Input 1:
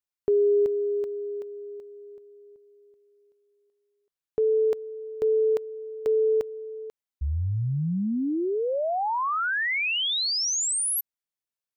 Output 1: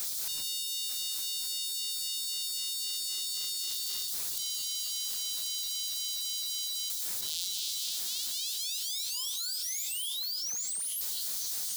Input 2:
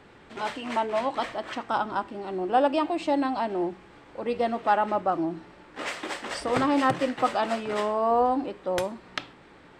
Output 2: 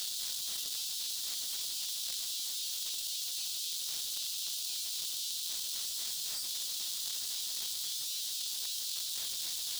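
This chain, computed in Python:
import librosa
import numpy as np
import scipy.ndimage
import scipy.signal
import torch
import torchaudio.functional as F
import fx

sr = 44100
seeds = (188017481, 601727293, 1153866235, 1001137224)

p1 = np.sign(x) * np.sqrt(np.mean(np.square(x)))
p2 = scipy.signal.sosfilt(scipy.signal.cheby2(6, 60, 1900.0, 'highpass', fs=sr, output='sos'), p1)
p3 = fx.rider(p2, sr, range_db=10, speed_s=2.0)
p4 = p2 + F.gain(torch.from_numpy(p3), -3.0).numpy()
p5 = p4 * (1.0 - 0.94 / 2.0 + 0.94 / 2.0 * np.cos(2.0 * np.pi * 3.8 * (np.arange(len(p4)) / sr)))
p6 = 10.0 ** (-29.5 / 20.0) * np.tanh(p5 / 10.0 ** (-29.5 / 20.0))
p7 = fx.echo_diffused(p6, sr, ms=1034, feedback_pct=45, wet_db=-14.0)
p8 = fx.room_shoebox(p7, sr, seeds[0], volume_m3=3600.0, walls='furnished', distance_m=0.75)
p9 = fx.env_flatten(p8, sr, amount_pct=100)
y = F.gain(torch.from_numpy(p9), -4.5).numpy()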